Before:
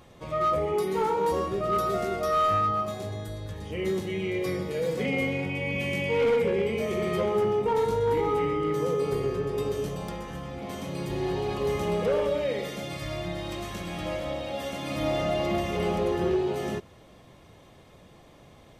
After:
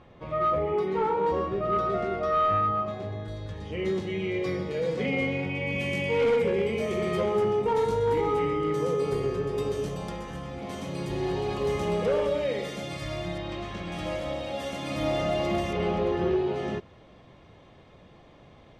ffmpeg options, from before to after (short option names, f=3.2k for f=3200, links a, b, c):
-af "asetnsamples=n=441:p=0,asendcmd='3.28 lowpass f 5200;5.67 lowpass f 9700;13.38 lowpass f 3900;13.92 lowpass f 10000;15.73 lowpass f 4000',lowpass=2.8k"